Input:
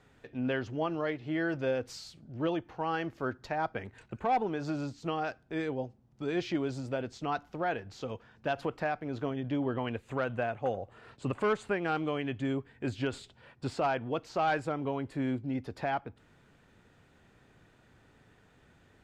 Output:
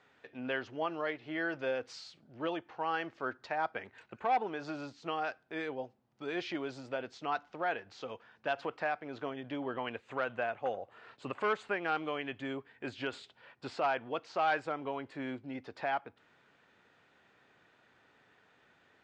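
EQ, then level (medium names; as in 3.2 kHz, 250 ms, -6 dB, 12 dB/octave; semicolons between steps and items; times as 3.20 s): high-pass 840 Hz 6 dB/octave; distance through air 120 m; +2.5 dB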